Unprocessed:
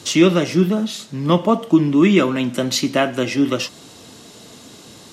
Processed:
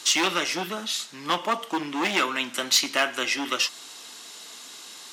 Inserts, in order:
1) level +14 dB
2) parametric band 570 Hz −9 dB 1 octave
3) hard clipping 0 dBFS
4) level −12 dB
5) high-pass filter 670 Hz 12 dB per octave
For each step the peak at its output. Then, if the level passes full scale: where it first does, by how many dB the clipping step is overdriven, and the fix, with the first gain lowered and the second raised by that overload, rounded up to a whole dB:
+12.0, +9.5, 0.0, −12.0, −8.0 dBFS
step 1, 9.5 dB
step 1 +4 dB, step 4 −2 dB

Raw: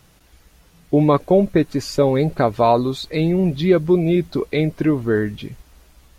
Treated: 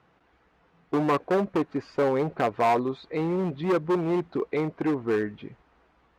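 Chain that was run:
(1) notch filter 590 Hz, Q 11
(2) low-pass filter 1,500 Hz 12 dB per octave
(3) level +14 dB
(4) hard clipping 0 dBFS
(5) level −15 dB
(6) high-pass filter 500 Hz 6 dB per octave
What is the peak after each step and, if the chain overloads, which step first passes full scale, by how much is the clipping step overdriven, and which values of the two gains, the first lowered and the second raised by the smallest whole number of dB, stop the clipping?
−4.5, −4.5, +9.5, 0.0, −15.0, −11.0 dBFS
step 3, 9.5 dB
step 3 +4 dB, step 5 −5 dB

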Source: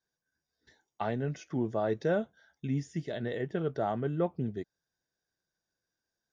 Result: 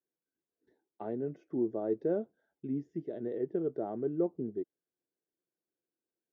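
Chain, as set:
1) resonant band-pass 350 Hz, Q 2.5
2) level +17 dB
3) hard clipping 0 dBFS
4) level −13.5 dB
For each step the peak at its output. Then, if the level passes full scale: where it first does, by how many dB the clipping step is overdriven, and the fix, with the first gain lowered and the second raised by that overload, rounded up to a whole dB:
−22.0, −5.0, −5.0, −18.5 dBFS
no step passes full scale

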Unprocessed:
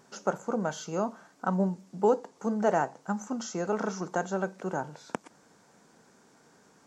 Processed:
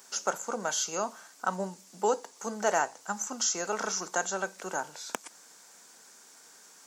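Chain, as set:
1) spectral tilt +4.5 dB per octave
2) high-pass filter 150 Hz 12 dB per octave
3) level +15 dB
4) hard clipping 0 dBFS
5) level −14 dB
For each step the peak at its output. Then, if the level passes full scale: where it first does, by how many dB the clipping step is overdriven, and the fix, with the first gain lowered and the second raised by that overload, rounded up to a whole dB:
−8.0, −9.0, +6.0, 0.0, −14.0 dBFS
step 3, 6.0 dB
step 3 +9 dB, step 5 −8 dB

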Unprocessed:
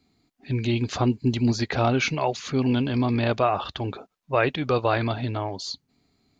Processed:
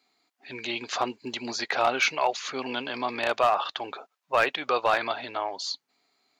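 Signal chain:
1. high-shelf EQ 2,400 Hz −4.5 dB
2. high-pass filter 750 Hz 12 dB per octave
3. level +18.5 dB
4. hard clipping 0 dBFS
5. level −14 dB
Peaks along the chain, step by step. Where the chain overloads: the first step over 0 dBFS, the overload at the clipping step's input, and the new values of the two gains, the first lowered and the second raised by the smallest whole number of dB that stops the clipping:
−9.5, −11.5, +7.0, 0.0, −14.0 dBFS
step 3, 7.0 dB
step 3 +11.5 dB, step 5 −7 dB

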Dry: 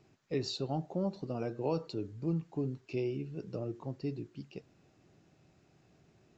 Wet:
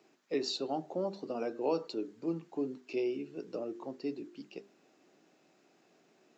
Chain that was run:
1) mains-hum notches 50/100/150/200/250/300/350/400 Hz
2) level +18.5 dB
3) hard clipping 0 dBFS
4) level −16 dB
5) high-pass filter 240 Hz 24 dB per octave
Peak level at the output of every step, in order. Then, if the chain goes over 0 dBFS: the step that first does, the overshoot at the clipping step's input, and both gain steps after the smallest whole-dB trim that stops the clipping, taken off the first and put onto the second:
−21.0, −2.5, −2.5, −18.5, −20.0 dBFS
no step passes full scale

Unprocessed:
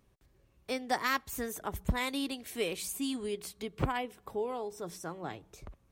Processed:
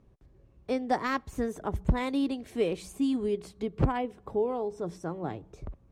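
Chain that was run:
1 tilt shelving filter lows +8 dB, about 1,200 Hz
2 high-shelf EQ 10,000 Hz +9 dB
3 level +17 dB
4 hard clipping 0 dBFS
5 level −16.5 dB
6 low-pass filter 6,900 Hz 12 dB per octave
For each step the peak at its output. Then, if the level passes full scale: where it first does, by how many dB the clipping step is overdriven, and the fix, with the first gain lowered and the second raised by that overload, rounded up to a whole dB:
−10.5, −10.5, +6.5, 0.0, −16.5, −16.5 dBFS
step 3, 6.5 dB
step 3 +10 dB, step 5 −9.5 dB

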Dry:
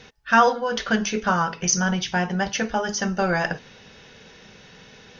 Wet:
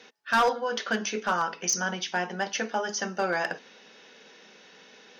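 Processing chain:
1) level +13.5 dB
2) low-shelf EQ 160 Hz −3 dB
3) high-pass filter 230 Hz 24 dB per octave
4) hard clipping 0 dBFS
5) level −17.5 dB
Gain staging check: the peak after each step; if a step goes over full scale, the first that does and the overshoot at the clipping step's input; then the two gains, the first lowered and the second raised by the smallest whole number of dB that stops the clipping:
+9.0, +9.0, +9.0, 0.0, −17.5 dBFS
step 1, 9.0 dB
step 1 +4.5 dB, step 5 −8.5 dB

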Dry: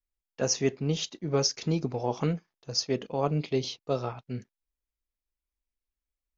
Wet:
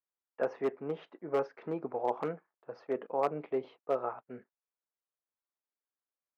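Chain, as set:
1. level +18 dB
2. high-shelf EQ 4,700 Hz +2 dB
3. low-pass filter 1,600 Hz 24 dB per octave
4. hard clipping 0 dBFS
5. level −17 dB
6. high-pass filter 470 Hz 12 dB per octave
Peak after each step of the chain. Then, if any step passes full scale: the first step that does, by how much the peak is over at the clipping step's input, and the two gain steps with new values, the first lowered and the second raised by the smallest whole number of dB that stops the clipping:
+5.5, +5.5, +4.5, 0.0, −17.0, −15.5 dBFS
step 1, 4.5 dB
step 1 +13 dB, step 5 −12 dB

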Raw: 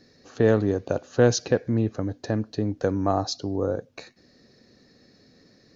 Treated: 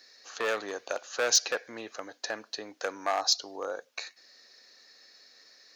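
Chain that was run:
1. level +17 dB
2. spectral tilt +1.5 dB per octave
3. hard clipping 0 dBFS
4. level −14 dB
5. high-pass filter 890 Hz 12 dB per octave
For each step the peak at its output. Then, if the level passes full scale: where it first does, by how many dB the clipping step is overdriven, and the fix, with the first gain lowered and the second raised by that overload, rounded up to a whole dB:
+11.5, +10.0, 0.0, −14.0, −12.5 dBFS
step 1, 10.0 dB
step 1 +7 dB, step 4 −4 dB

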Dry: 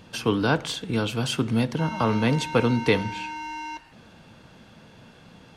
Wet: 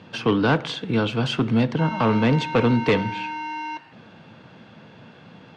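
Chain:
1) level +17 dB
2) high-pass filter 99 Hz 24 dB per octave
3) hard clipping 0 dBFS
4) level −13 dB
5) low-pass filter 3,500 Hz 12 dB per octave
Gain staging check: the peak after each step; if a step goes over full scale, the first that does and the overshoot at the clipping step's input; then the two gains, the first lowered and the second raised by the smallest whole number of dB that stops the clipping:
+9.0, +9.5, 0.0, −13.0, −12.5 dBFS
step 1, 9.5 dB
step 1 +7 dB, step 4 −3 dB

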